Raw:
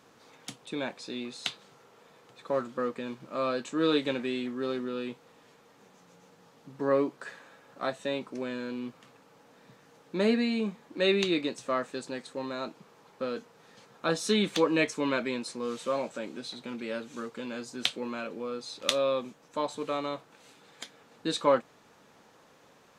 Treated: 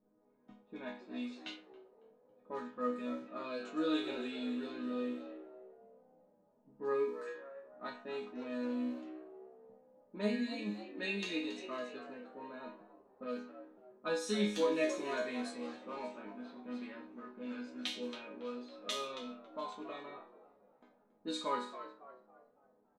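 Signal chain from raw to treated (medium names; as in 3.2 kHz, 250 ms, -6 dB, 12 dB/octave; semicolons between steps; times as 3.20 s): chord resonator G#3 minor, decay 0.46 s; frequency-shifting echo 277 ms, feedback 54%, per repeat +67 Hz, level -12 dB; level-controlled noise filter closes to 440 Hz, open at -45.5 dBFS; trim +10 dB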